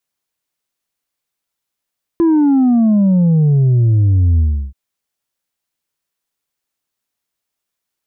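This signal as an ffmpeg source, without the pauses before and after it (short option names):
-f lavfi -i "aevalsrc='0.355*clip((2.53-t)/0.34,0,1)*tanh(1.41*sin(2*PI*340*2.53/log(65/340)*(exp(log(65/340)*t/2.53)-1)))/tanh(1.41)':d=2.53:s=44100"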